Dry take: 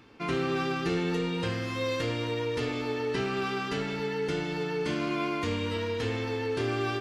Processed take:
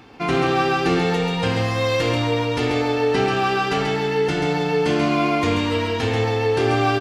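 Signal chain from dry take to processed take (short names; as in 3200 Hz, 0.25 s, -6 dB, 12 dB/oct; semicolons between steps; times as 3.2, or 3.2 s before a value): bell 760 Hz +10.5 dB 0.23 oct; on a send: echo 0.136 s -4.5 dB; on the sum: gain +8.5 dB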